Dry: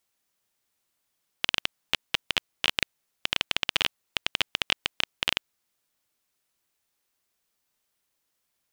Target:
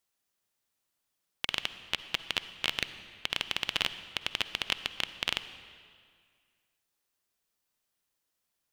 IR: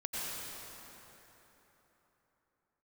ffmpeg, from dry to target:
-filter_complex "[0:a]bandreject=frequency=2200:width=29,asplit=2[link_01][link_02];[1:a]atrim=start_sample=2205,asetrate=83790,aresample=44100,lowshelf=frequency=190:gain=6[link_03];[link_02][link_03]afir=irnorm=-1:irlink=0,volume=-9.5dB[link_04];[link_01][link_04]amix=inputs=2:normalize=0,volume=-5.5dB"

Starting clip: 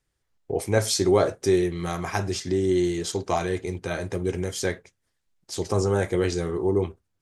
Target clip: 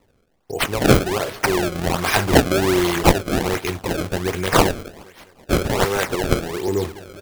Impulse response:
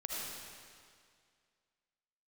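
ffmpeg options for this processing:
-filter_complex "[0:a]asettb=1/sr,asplit=3[link_01][link_02][link_03];[link_01]atrim=end=5.744[link_04];[link_02]atrim=start=5.74:end=6.68,asetpts=PTS-STARTPTS,afade=type=in:duration=0.004:curve=qsin,afade=type=out:start_time=0.936:duration=0.004:curve=qsin,acrossover=split=300[link_05][link_06];[link_05]acompressor=threshold=-33dB:ratio=6[link_07];[link_07][link_06]amix=inputs=2:normalize=0[link_08];[link_03]atrim=start=6.676[link_09];[link_04][link_08]acrossfade=duration=0.004:curve1=hsin:curve2=qsin[link_10];[link_10][link_09]acrossfade=duration=0.004:curve1=qsin:curve2=hsin,asplit=2[link_11][link_12];[link_12]alimiter=limit=-16dB:level=0:latency=1:release=75,volume=1dB[link_13];[link_11][link_13]amix=inputs=2:normalize=0,aecho=1:1:206|412|618|824:0.0891|0.0481|0.026|0.014,crystalizer=i=8.5:c=0,acrusher=samples=27:mix=1:aa=0.000001:lfo=1:lforange=43.2:lforate=1.3,dynaudnorm=framelen=190:gausssize=7:maxgain=11.5dB,volume=-1dB"

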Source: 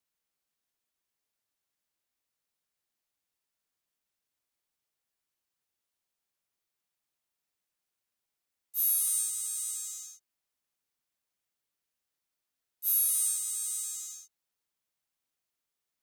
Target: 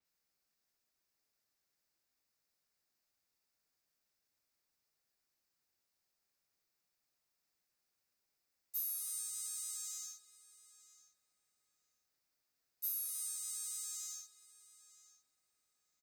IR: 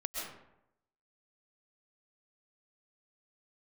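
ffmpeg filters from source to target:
-filter_complex "[0:a]equalizer=frequency=1000:width_type=o:width=0.33:gain=-3,equalizer=frequency=3150:width_type=o:width=0.33:gain=-7,equalizer=frequency=5000:width_type=o:width=0.33:gain=5,equalizer=frequency=10000:width_type=o:width=0.33:gain=-4,acompressor=threshold=-38dB:ratio=6,asplit=2[link_01][link_02];[link_02]adelay=955,lowpass=frequency=2300:poles=1,volume=-12.5dB,asplit=2[link_03][link_04];[link_04]adelay=955,lowpass=frequency=2300:poles=1,volume=0.27,asplit=2[link_05][link_06];[link_06]adelay=955,lowpass=frequency=2300:poles=1,volume=0.27[link_07];[link_01][link_03][link_05][link_07]amix=inputs=4:normalize=0,asplit=2[link_08][link_09];[1:a]atrim=start_sample=2205,adelay=77[link_10];[link_09][link_10]afir=irnorm=-1:irlink=0,volume=-19.5dB[link_11];[link_08][link_11]amix=inputs=2:normalize=0,adynamicequalizer=threshold=0.00141:dfrequency=5500:dqfactor=0.7:tfrequency=5500:tqfactor=0.7:attack=5:release=100:ratio=0.375:range=2:mode=cutabove:tftype=highshelf,volume=1.5dB"

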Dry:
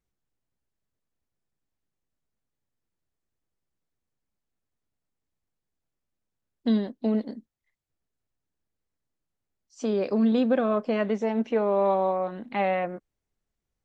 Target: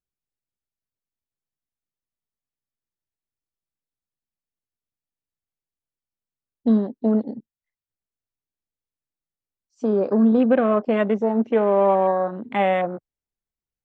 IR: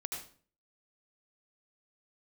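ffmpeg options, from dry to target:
-af "afwtdn=0.0112,volume=5.5dB"

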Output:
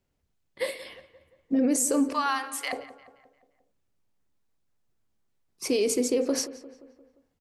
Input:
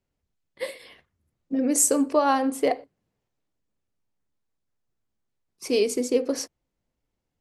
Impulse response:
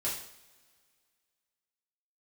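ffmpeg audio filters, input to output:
-filter_complex "[0:a]asettb=1/sr,asplit=3[link_01][link_02][link_03];[link_01]atrim=end=2.134[link_04];[link_02]atrim=start=2.13:end=2.73,asetpts=PTS-STARTPTS,afade=type=in:duration=0.004:curve=qsin,afade=type=out:start_time=0.596:duration=0.004:curve=qsin,highpass=frequency=1100:width=0.5412,highpass=frequency=1100:width=1.3066[link_05];[link_03]atrim=start=2.726[link_06];[link_04][link_05]acrossfade=duration=0.004:curve1=hsin:curve2=qsin[link_07];[link_07][link_06]acrossfade=duration=0.004:curve1=qsin:curve2=hsin,alimiter=limit=-20dB:level=0:latency=1:release=53,asplit=2[link_08][link_09];[link_09]adelay=175,lowpass=frequency=2800:poles=1,volume=-15.5dB,asplit=2[link_10][link_11];[link_11]adelay=175,lowpass=frequency=2800:poles=1,volume=0.55,asplit=2[link_12][link_13];[link_13]adelay=175,lowpass=frequency=2800:poles=1,volume=0.55,asplit=2[link_14][link_15];[link_15]adelay=175,lowpass=frequency=2800:poles=1,volume=0.55,asplit=2[link_16][link_17];[link_17]adelay=175,lowpass=frequency=2800:poles=1,volume=0.55[link_18];[link_08][link_10][link_12][link_14][link_16][link_18]amix=inputs=6:normalize=0,volume=3.5dB"

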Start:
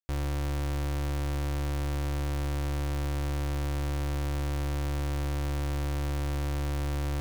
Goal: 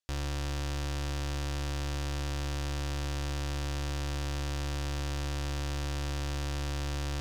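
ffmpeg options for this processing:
ffmpeg -i in.wav -af "lowpass=6600,highshelf=frequency=2200:gain=10.5,bandreject=frequency=2200:width=19,alimiter=level_in=1dB:limit=-24dB:level=0:latency=1:release=17,volume=-1dB,acrusher=bits=4:mode=log:mix=0:aa=0.000001" out.wav

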